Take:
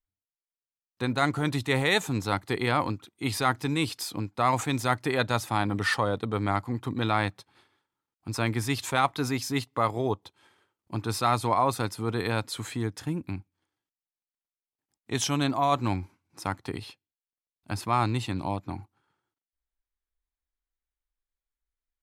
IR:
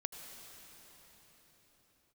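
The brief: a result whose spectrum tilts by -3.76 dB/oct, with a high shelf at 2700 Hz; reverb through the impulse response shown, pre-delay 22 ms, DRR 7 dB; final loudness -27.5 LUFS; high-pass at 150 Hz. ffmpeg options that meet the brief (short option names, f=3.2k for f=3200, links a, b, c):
-filter_complex "[0:a]highpass=150,highshelf=f=2.7k:g=3.5,asplit=2[a][b];[1:a]atrim=start_sample=2205,adelay=22[c];[b][c]afir=irnorm=-1:irlink=0,volume=-6dB[d];[a][d]amix=inputs=2:normalize=0"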